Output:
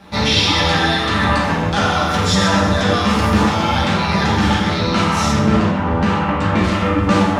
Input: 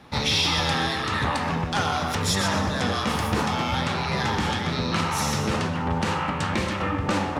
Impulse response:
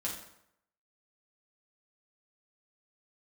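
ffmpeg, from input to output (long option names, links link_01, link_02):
-filter_complex "[0:a]asettb=1/sr,asplit=3[link_01][link_02][link_03];[link_01]atrim=end=5.314[link_04];[link_02]atrim=start=5.31:end=6.64,asetpts=PTS-STARTPTS,afade=type=in:duration=0.004:curve=qsin,afade=type=out:start_time=1.326:duration=0.004:curve=qsin,aemphasis=mode=reproduction:type=75fm[link_05];[link_03]atrim=start=6.636[link_06];[link_04][link_05]acrossfade=duration=0.004:curve1=hsin:curve2=qsin[link_07];[link_07][link_06]acrossfade=duration=0.004:curve1=qsin:curve2=hsin,acrossover=split=7100[link_08][link_09];[link_09]acompressor=threshold=-49dB:ratio=4:attack=1:release=60[link_10];[link_08][link_10]amix=inputs=2:normalize=0[link_11];[1:a]atrim=start_sample=2205[link_12];[link_11][link_12]afir=irnorm=-1:irlink=0,volume=6dB"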